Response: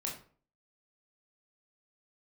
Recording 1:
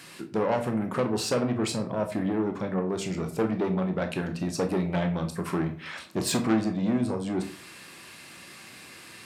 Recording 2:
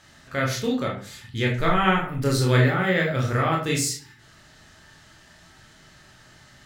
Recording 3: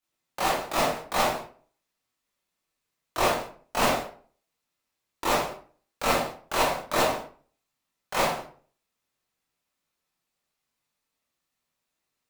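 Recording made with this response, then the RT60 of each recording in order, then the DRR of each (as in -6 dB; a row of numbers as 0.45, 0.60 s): 2; 0.45, 0.45, 0.45 s; 5.0, -2.0, -9.0 dB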